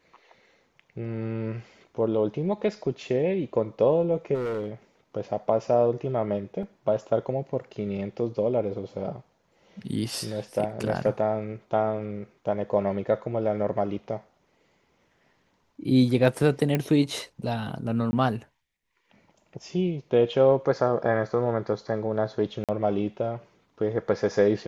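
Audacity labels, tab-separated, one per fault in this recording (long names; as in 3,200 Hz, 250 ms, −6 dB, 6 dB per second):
4.340000	4.710000	clipping −26.5 dBFS
6.630000	6.630000	drop-out 2.4 ms
16.750000	16.750000	click −12 dBFS
18.110000	18.130000	drop-out 20 ms
22.640000	22.690000	drop-out 47 ms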